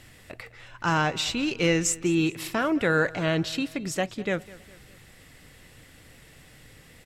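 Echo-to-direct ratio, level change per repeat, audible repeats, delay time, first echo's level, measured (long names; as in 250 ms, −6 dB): −19.0 dB, −6.5 dB, 3, 204 ms, −20.0 dB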